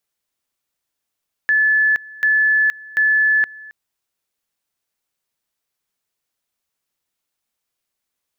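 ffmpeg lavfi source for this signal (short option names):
-f lavfi -i "aevalsrc='pow(10,(-12-22.5*gte(mod(t,0.74),0.47))/20)*sin(2*PI*1730*t)':d=2.22:s=44100"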